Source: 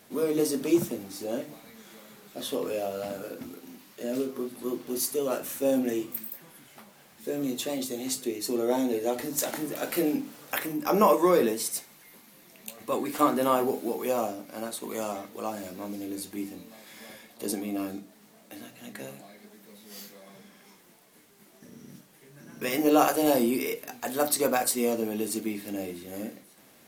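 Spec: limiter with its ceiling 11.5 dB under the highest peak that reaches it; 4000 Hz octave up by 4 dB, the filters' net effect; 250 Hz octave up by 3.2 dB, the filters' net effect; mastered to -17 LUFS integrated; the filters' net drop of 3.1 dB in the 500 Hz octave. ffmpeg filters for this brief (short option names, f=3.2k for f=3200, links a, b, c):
-af "equalizer=f=250:t=o:g=6,equalizer=f=500:t=o:g=-6,equalizer=f=4k:t=o:g=5,volume=13.5dB,alimiter=limit=-5dB:level=0:latency=1"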